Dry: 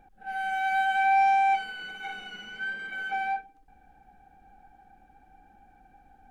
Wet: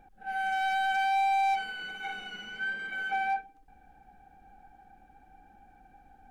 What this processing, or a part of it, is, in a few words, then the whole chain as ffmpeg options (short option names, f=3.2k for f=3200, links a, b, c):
limiter into clipper: -af "alimiter=limit=-21dB:level=0:latency=1:release=35,asoftclip=type=hard:threshold=-24.5dB"